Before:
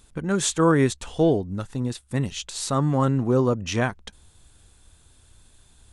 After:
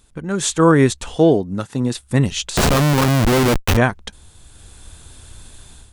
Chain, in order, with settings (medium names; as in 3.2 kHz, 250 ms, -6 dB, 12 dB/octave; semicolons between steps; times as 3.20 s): 1.16–1.94 s: high-pass 130 Hz 12 dB/octave; level rider gain up to 14 dB; 2.57–3.77 s: Schmitt trigger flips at -17 dBFS